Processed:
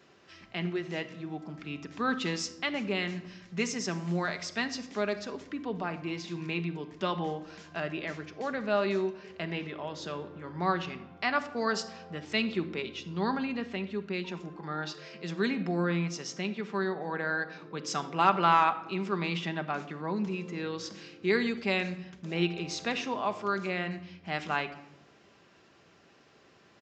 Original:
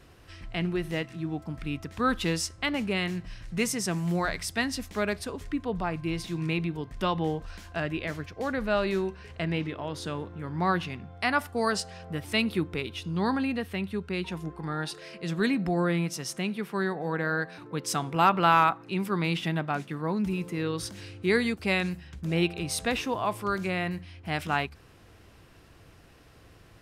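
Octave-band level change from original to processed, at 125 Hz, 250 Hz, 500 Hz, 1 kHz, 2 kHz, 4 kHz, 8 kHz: -5.5, -4.0, -2.0, -2.0, -2.5, -2.5, -5.5 dB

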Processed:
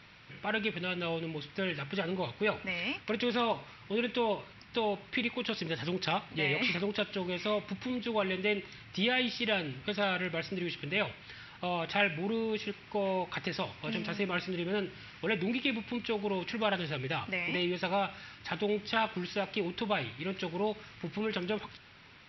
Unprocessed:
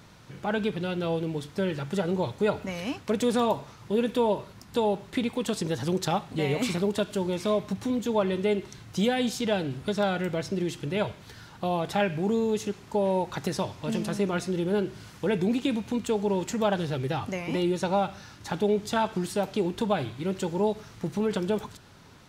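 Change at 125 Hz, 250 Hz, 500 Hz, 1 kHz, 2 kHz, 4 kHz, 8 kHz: -8.0 dB, -8.0 dB, -7.0 dB, -5.0 dB, +3.5 dB, +1.5 dB, under -15 dB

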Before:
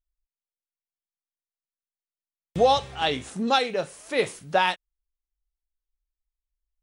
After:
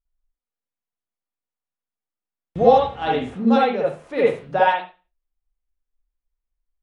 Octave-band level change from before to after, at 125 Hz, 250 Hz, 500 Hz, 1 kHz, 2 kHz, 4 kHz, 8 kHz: +4.5 dB, +9.5 dB, +7.0 dB, +5.0 dB, +1.5 dB, -6.0 dB, under -15 dB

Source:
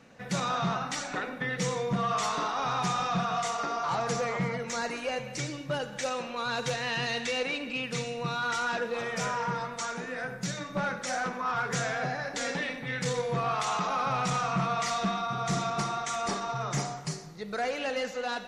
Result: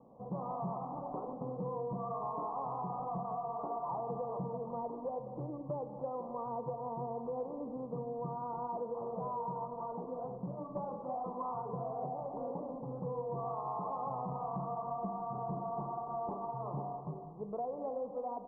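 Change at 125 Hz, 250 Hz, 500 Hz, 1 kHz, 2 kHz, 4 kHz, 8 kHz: -8.5 dB, -7.5 dB, -5.0 dB, -7.5 dB, under -40 dB, under -40 dB, under -40 dB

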